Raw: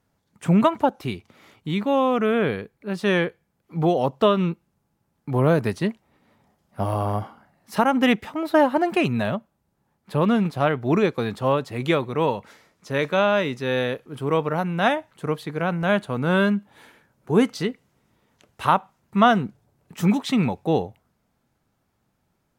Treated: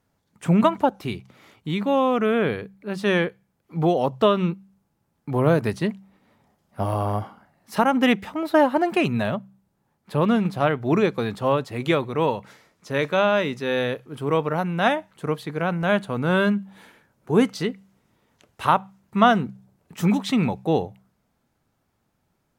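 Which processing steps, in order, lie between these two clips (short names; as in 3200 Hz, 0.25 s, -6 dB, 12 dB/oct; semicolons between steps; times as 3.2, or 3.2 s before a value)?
de-hum 64.65 Hz, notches 3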